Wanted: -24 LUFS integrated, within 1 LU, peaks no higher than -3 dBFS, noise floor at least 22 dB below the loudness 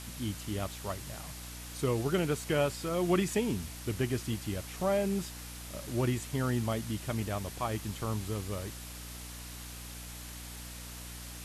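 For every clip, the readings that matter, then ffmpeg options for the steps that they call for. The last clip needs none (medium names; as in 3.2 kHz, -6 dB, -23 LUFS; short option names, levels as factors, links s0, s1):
hum 60 Hz; highest harmonic 300 Hz; hum level -46 dBFS; noise floor -44 dBFS; noise floor target -57 dBFS; loudness -34.5 LUFS; peak level -15.0 dBFS; loudness target -24.0 LUFS
-> -af "bandreject=f=60:t=h:w=6,bandreject=f=120:t=h:w=6,bandreject=f=180:t=h:w=6,bandreject=f=240:t=h:w=6,bandreject=f=300:t=h:w=6"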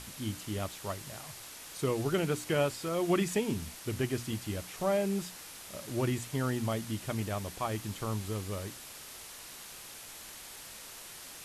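hum not found; noise floor -48 dBFS; noise floor target -57 dBFS
-> -af "afftdn=nr=9:nf=-48"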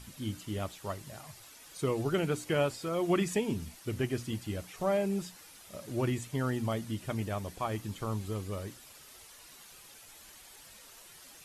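noise floor -54 dBFS; noise floor target -56 dBFS
-> -af "afftdn=nr=6:nf=-54"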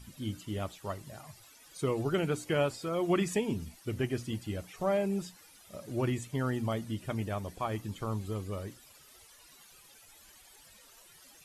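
noise floor -58 dBFS; loudness -34.0 LUFS; peak level -16.5 dBFS; loudness target -24.0 LUFS
-> -af "volume=3.16"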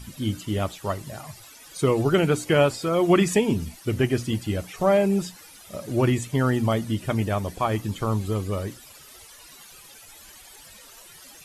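loudness -24.0 LUFS; peak level -6.5 dBFS; noise floor -48 dBFS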